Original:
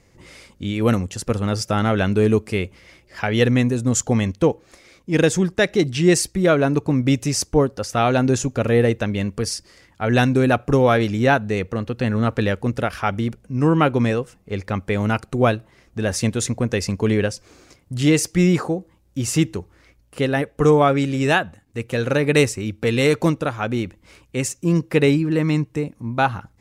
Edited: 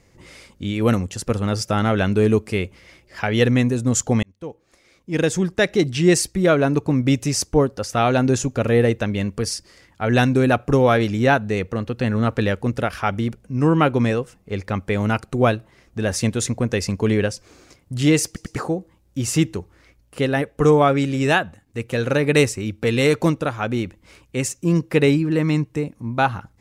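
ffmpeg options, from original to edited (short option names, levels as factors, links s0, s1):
-filter_complex "[0:a]asplit=5[s0][s1][s2][s3][s4];[s0]atrim=end=4.23,asetpts=PTS-STARTPTS,afade=t=out:st=4.226:d=0.004:c=hsin[s5];[s1]atrim=start=4.23:end=18.362,asetpts=PTS-STARTPTS,afade=t=in:d=1.43[s6];[s2]atrim=start=18.258:end=18.362[s7];[s3]atrim=start=18.258:end=18.362[s8];[s4]atrim=start=18.558[s9];[s5][s6]concat=n=2:v=0:a=1[s10];[s10][s7]acrossfade=d=0.004:c1=hsin:c2=hsin[s11];[s11][s8]acrossfade=d=0.004:c1=hsin:c2=hsin[s12];[s12][s9]acrossfade=d=0.004:c1=hsin:c2=hsin"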